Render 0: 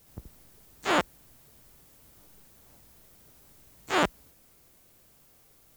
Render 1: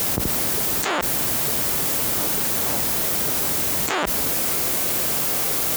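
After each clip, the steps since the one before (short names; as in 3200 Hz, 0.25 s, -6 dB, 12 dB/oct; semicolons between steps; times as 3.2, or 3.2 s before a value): HPF 260 Hz 6 dB/oct; fast leveller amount 100%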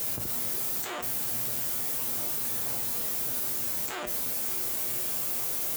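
high shelf 7200 Hz +6.5 dB; resonator 120 Hz, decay 0.35 s, harmonics all, mix 80%; gain -5 dB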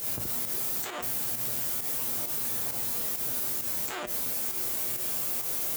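pump 133 bpm, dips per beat 1, -8 dB, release 91 ms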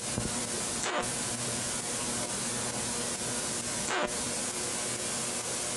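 small resonant body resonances 210/520/1000/1500 Hz, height 6 dB; gain +4.5 dB; Vorbis 48 kbps 22050 Hz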